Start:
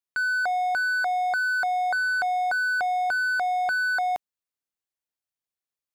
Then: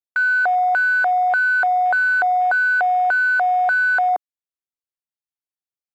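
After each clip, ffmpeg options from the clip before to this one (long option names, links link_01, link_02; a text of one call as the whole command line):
ffmpeg -i in.wav -af "afwtdn=0.02,volume=7.5dB" out.wav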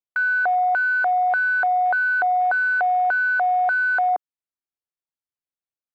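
ffmpeg -i in.wav -af "highshelf=frequency=3500:gain=-10.5,volume=-1.5dB" out.wav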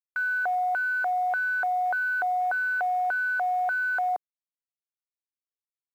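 ffmpeg -i in.wav -af "acrusher=bits=9:dc=4:mix=0:aa=0.000001,volume=-6.5dB" out.wav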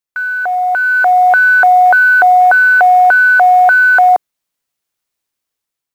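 ffmpeg -i in.wav -af "dynaudnorm=framelen=370:gausssize=5:maxgain=10dB,volume=9dB" out.wav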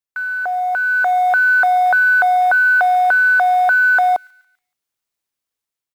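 ffmpeg -i in.wav -filter_complex "[0:a]acrossover=split=630|1800[link_01][link_02][link_03];[link_01]asoftclip=type=hard:threshold=-21.5dB[link_04];[link_03]aecho=1:1:142|284|426|568:0.141|0.065|0.0299|0.0137[link_05];[link_04][link_02][link_05]amix=inputs=3:normalize=0,volume=-5dB" out.wav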